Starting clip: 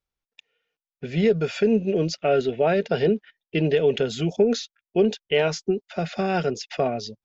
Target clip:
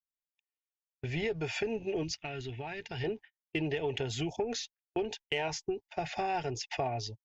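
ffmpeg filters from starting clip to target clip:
ffmpeg -i in.wav -filter_complex "[0:a]firequalizer=gain_entry='entry(120,0);entry(190,-23);entry(300,-7);entry(520,-16);entry(850,3);entry(1300,-15);entry(1800,-4);entry(2700,-5);entry(3900,-10);entry(5900,-6)':delay=0.05:min_phase=1,agate=range=-29dB:threshold=-47dB:ratio=16:detection=peak,asplit=2[link_01][link_02];[link_02]asoftclip=type=tanh:threshold=-23dB,volume=-5dB[link_03];[link_01][link_03]amix=inputs=2:normalize=0,acompressor=threshold=-30dB:ratio=4,asettb=1/sr,asplit=3[link_04][link_05][link_06];[link_04]atrim=end=2.034[link_07];[link_05]atrim=start=2.03:end=3.04,asetpts=PTS-STARTPTS,afade=type=in:duration=0.004:curve=qsin,afade=type=out:start_time=1.006:duration=0.004:curve=qsin,equalizer=frequency=580:width_type=o:width=1.4:gain=-13.5[link_08];[link_06]atrim=start=3.036[link_09];[link_07][link_08]acrossfade=duration=0.004:curve1=hsin:curve2=qsin[link_10];[link_10][link_09]acrossfade=duration=0.004:curve1=qsin:curve2=hsin" out.wav

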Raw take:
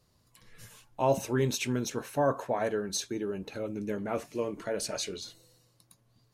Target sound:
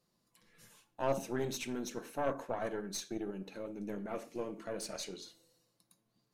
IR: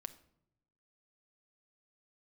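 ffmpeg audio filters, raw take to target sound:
-filter_complex "[0:a]lowshelf=frequency=140:width_type=q:width=1.5:gain=-9.5[link_01];[1:a]atrim=start_sample=2205,afade=type=out:start_time=0.19:duration=0.01,atrim=end_sample=8820[link_02];[link_01][link_02]afir=irnorm=-1:irlink=0,aeval=exprs='0.133*(cos(1*acos(clip(val(0)/0.133,-1,1)))-cos(1*PI/2))+0.0211*(cos(4*acos(clip(val(0)/0.133,-1,1)))-cos(4*PI/2))':channel_layout=same,volume=-4dB"

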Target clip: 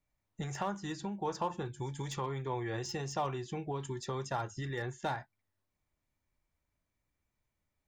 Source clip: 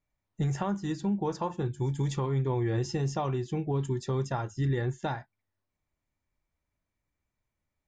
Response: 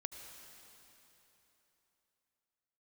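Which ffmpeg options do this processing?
-filter_complex "[0:a]acrossover=split=540|910[link_01][link_02][link_03];[link_01]acompressor=threshold=-39dB:ratio=6[link_04];[link_03]asoftclip=type=hard:threshold=-36dB[link_05];[link_04][link_02][link_05]amix=inputs=3:normalize=0"

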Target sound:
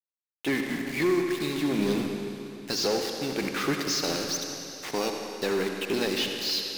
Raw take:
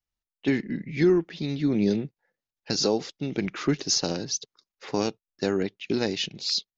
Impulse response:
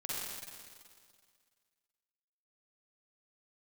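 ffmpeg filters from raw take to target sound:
-filter_complex "[0:a]asplit=2[link_01][link_02];[link_02]highpass=frequency=720:poles=1,volume=20dB,asoftclip=type=tanh:threshold=-11.5dB[link_03];[link_01][link_03]amix=inputs=2:normalize=0,lowpass=frequency=3800:poles=1,volume=-6dB,aeval=exprs='val(0)*gte(abs(val(0)),0.0422)':channel_layout=same,asplit=2[link_04][link_05];[1:a]atrim=start_sample=2205,asetrate=29988,aresample=44100[link_06];[link_05][link_06]afir=irnorm=-1:irlink=0,volume=-5.5dB[link_07];[link_04][link_07]amix=inputs=2:normalize=0,volume=-9dB"

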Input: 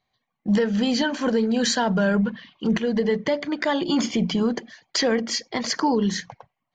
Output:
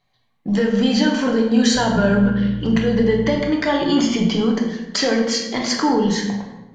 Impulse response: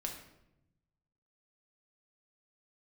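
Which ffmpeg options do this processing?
-filter_complex "[0:a]asplit=2[link_01][link_02];[link_02]acompressor=threshold=-29dB:ratio=6,volume=0dB[link_03];[link_01][link_03]amix=inputs=2:normalize=0,asettb=1/sr,asplit=3[link_04][link_05][link_06];[link_04]atrim=end=1.754[link_07];[link_05]atrim=start=1.75:end=3.36,asetpts=PTS-STARTPTS,afade=type=in:duration=0.004:curve=qsin,afade=type=out:start_time=1.606:duration=0.004:curve=qsin,aeval=exprs='val(0)+0.0355*(sin(2*PI*60*n/s)+sin(2*PI*2*60*n/s)/2+sin(2*PI*3*60*n/s)/3+sin(2*PI*4*60*n/s)/4+sin(2*PI*5*60*n/s)/5)':channel_layout=same[link_08];[link_06]atrim=start=3.356[link_09];[link_07][link_08]acrossfade=duration=0.004:curve1=hsin:curve2=qsin[link_10];[link_10][link_09]acrossfade=duration=0.004:curve1=qsin:curve2=hsin[link_11];[1:a]atrim=start_sample=2205,asetrate=33957,aresample=44100[link_12];[link_11][link_12]afir=irnorm=-1:irlink=0"

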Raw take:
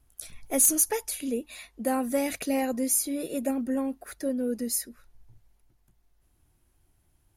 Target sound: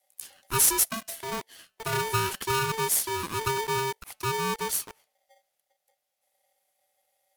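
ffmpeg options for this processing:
ffmpeg -i in.wav -filter_complex "[0:a]highpass=frequency=95:width=0.5412,highpass=frequency=95:width=1.3066,bandreject=frequency=219.4:width_type=h:width=4,bandreject=frequency=438.8:width_type=h:width=4,bandreject=frequency=658.2:width_type=h:width=4,bandreject=frequency=877.6:width_type=h:width=4,bandreject=frequency=1097:width_type=h:width=4,bandreject=frequency=1316.4:width_type=h:width=4,bandreject=frequency=1535.8:width_type=h:width=4,bandreject=frequency=1755.2:width_type=h:width=4,bandreject=frequency=1974.6:width_type=h:width=4,bandreject=frequency=2194:width_type=h:width=4,bandreject=frequency=2413.4:width_type=h:width=4,asettb=1/sr,asplit=3[link_01][link_02][link_03];[link_01]atrim=end=0.844[link_04];[link_02]atrim=start=0.84:end=1.93,asetpts=PTS-STARTPTS,afade=type=in:duration=0.004:curve=qsin,afade=type=out:start_time=1.086:duration=0.004:curve=qsin,aeval=exprs='(tanh(20*val(0)+0.8)-tanh(0.8))/20':channel_layout=same[link_05];[link_03]atrim=start=1.926[link_06];[link_04][link_05]acrossfade=duration=0.004:curve1=hsin:curve2=qsin[link_07];[link_07][link_06]acrossfade=duration=0.004:curve1=qsin:curve2=hsin,acrossover=split=160|1600[link_08][link_09][link_10];[link_09]acrusher=bits=6:mix=0:aa=0.000001[link_11];[link_08][link_11][link_10]amix=inputs=3:normalize=0,aeval=exprs='val(0)*sgn(sin(2*PI*670*n/s))':channel_layout=same" out.wav

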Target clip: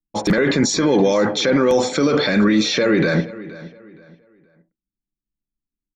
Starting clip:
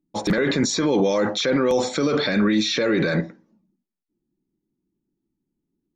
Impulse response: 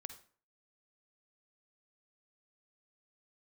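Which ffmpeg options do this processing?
-filter_complex "[0:a]anlmdn=0.631,bandreject=frequency=3800:width=15,asplit=2[link_01][link_02];[link_02]adelay=471,lowpass=frequency=3700:poles=1,volume=-17.5dB,asplit=2[link_03][link_04];[link_04]adelay=471,lowpass=frequency=3700:poles=1,volume=0.31,asplit=2[link_05][link_06];[link_06]adelay=471,lowpass=frequency=3700:poles=1,volume=0.31[link_07];[link_01][link_03][link_05][link_07]amix=inputs=4:normalize=0,volume=4dB"

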